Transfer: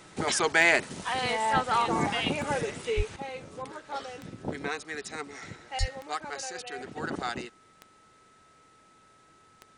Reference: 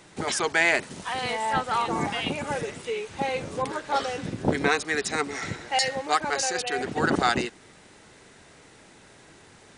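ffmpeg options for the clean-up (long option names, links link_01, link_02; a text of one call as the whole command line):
ffmpeg -i in.wav -filter_complex "[0:a]adeclick=threshold=4,bandreject=frequency=1300:width=30,asplit=3[link_01][link_02][link_03];[link_01]afade=type=out:start_time=2.96:duration=0.02[link_04];[link_02]highpass=frequency=140:width=0.5412,highpass=frequency=140:width=1.3066,afade=type=in:start_time=2.96:duration=0.02,afade=type=out:start_time=3.08:duration=0.02[link_05];[link_03]afade=type=in:start_time=3.08:duration=0.02[link_06];[link_04][link_05][link_06]amix=inputs=3:normalize=0,asplit=3[link_07][link_08][link_09];[link_07]afade=type=out:start_time=5.79:duration=0.02[link_10];[link_08]highpass=frequency=140:width=0.5412,highpass=frequency=140:width=1.3066,afade=type=in:start_time=5.79:duration=0.02,afade=type=out:start_time=5.91:duration=0.02[link_11];[link_09]afade=type=in:start_time=5.91:duration=0.02[link_12];[link_10][link_11][link_12]amix=inputs=3:normalize=0,asetnsamples=nb_out_samples=441:pad=0,asendcmd='3.16 volume volume 10.5dB',volume=0dB" out.wav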